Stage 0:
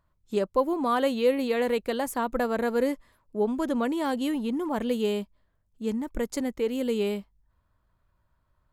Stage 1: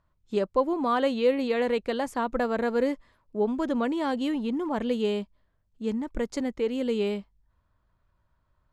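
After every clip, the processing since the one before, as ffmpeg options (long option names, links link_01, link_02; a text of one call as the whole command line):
ffmpeg -i in.wav -af "lowpass=6000" out.wav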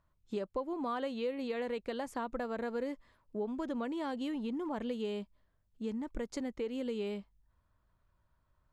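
ffmpeg -i in.wav -af "acompressor=threshold=-32dB:ratio=3,volume=-3.5dB" out.wav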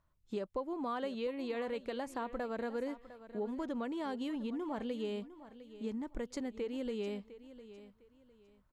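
ffmpeg -i in.wav -af "aecho=1:1:705|1410|2115:0.178|0.048|0.013,volume=-1.5dB" out.wav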